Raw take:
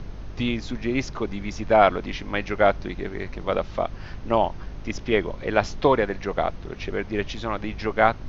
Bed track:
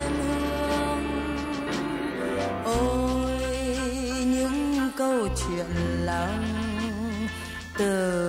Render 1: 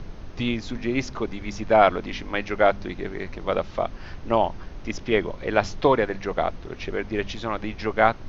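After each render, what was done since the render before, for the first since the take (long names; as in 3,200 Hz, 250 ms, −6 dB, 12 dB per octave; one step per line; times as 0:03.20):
hum removal 50 Hz, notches 5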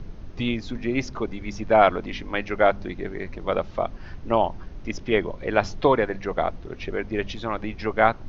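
broadband denoise 6 dB, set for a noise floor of −40 dBFS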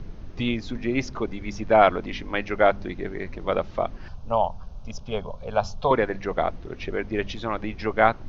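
0:04.08–0:05.91: phaser with its sweep stopped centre 800 Hz, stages 4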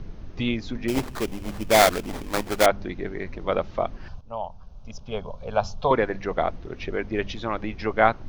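0:00.88–0:02.66: sample-rate reduction 2,800 Hz, jitter 20%
0:04.21–0:05.49: fade in, from −13 dB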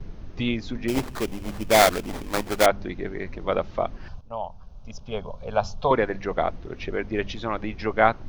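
noise gate with hold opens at −37 dBFS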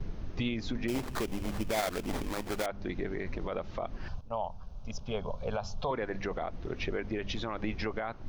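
downward compressor 3 to 1, threshold −27 dBFS, peak gain reduction 11.5 dB
brickwall limiter −23 dBFS, peak gain reduction 10.5 dB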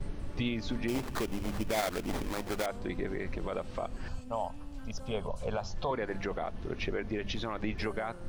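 mix in bed track −25 dB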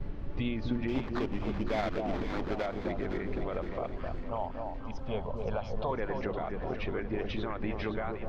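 high-frequency loss of the air 230 metres
delay that swaps between a low-pass and a high-pass 257 ms, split 990 Hz, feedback 69%, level −4 dB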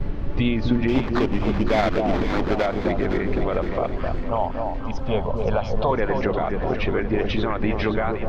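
level +11.5 dB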